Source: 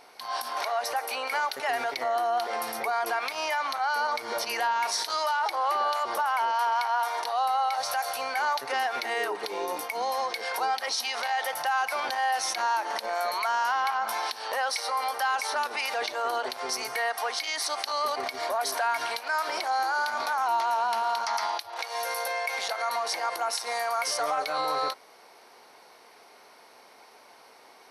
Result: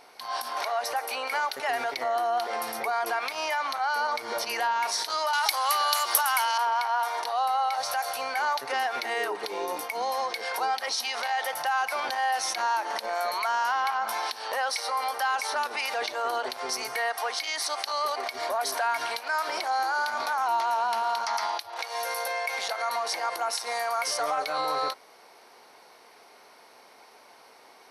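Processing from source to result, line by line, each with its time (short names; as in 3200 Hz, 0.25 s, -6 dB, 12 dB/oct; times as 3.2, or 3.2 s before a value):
5.33–6.58 tilt +5.5 dB/oct
17.12–18.34 HPF 200 Hz -> 420 Hz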